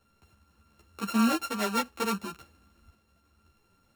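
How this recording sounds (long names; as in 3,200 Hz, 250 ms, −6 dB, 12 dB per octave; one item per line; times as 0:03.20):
a buzz of ramps at a fixed pitch in blocks of 32 samples
tremolo saw up 0.68 Hz, depth 30%
a shimmering, thickened sound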